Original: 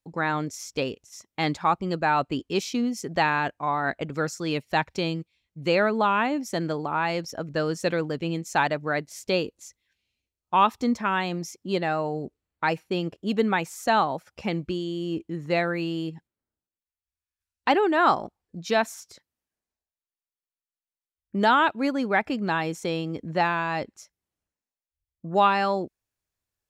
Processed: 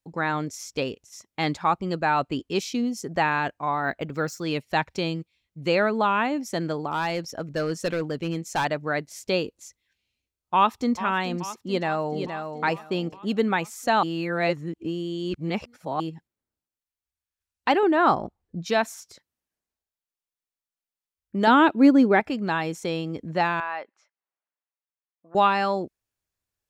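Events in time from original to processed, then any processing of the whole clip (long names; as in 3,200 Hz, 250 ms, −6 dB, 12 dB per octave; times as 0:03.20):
0:02.59–0:03.30: parametric band 710 Hz → 5,200 Hz −7 dB
0:03.82–0:04.43: linearly interpolated sample-rate reduction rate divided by 2×
0:06.87–0:08.65: gain into a clipping stage and back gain 20 dB
0:10.54–0:10.97: delay throw 430 ms, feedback 70%, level −13.5 dB
0:11.62–0:12.23: delay throw 470 ms, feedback 20%, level −7 dB
0:14.03–0:16.00: reverse
0:17.83–0:18.66: spectral tilt −2 dB per octave
0:21.47–0:22.20: parametric band 310 Hz +12 dB 1.3 octaves
0:23.60–0:25.35: band-pass filter 760–2,100 Hz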